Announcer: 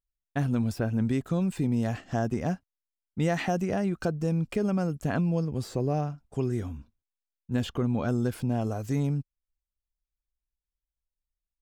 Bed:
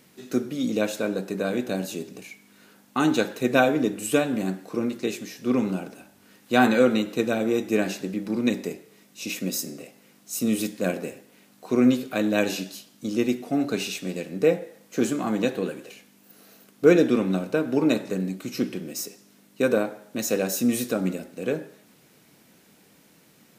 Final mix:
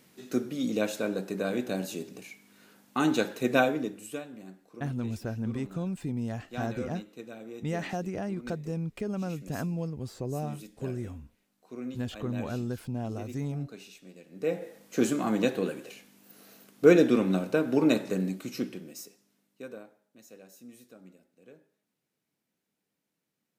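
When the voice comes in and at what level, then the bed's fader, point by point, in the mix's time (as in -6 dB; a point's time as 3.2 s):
4.45 s, -6.0 dB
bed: 3.6 s -4 dB
4.32 s -19.5 dB
14.24 s -19.5 dB
14.66 s -2 dB
18.29 s -2 dB
20.13 s -27 dB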